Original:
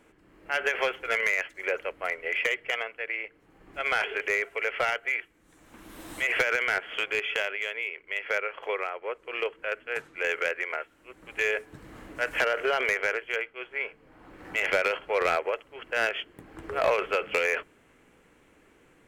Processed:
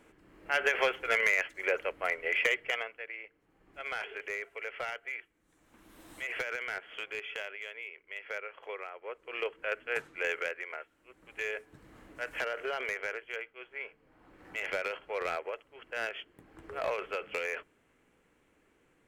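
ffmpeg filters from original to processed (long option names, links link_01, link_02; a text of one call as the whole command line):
ffmpeg -i in.wav -af "volume=8.5dB,afade=type=out:start_time=2.55:duration=0.56:silence=0.334965,afade=type=in:start_time=8.91:duration=1.04:silence=0.334965,afade=type=out:start_time=9.95:duration=0.64:silence=0.398107" out.wav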